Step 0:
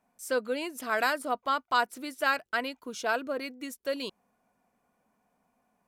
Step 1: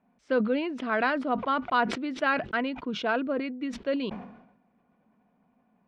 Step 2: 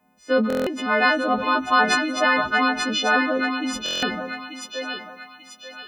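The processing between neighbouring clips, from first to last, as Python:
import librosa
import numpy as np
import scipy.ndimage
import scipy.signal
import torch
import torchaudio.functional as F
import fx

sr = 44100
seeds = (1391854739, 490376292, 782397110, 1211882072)

y1 = scipy.signal.sosfilt(scipy.signal.butter(4, 3400.0, 'lowpass', fs=sr, output='sos'), x)
y1 = fx.peak_eq(y1, sr, hz=200.0, db=10.0, octaves=1.7)
y1 = fx.sustainer(y1, sr, db_per_s=69.0)
y2 = fx.freq_snap(y1, sr, grid_st=3)
y2 = fx.echo_thinned(y2, sr, ms=888, feedback_pct=44, hz=750.0, wet_db=-3.5)
y2 = fx.buffer_glitch(y2, sr, at_s=(0.48, 3.84), block=1024, repeats=7)
y2 = F.gain(torch.from_numpy(y2), 5.5).numpy()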